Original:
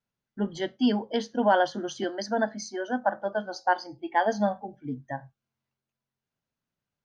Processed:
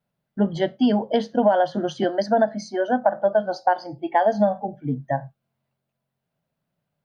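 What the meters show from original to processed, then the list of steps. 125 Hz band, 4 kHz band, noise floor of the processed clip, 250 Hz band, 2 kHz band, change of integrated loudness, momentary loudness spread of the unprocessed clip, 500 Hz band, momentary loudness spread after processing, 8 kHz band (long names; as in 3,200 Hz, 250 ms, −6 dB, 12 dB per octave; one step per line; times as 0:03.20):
+9.0 dB, +1.0 dB, −81 dBFS, +5.5 dB, 0.0 dB, +6.0 dB, 13 LU, +7.5 dB, 9 LU, can't be measured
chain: graphic EQ with 15 bands 160 Hz +10 dB, 630 Hz +10 dB, 6,300 Hz −8 dB
downward compressor 6 to 1, threshold −19 dBFS, peak gain reduction 10.5 dB
level +4.5 dB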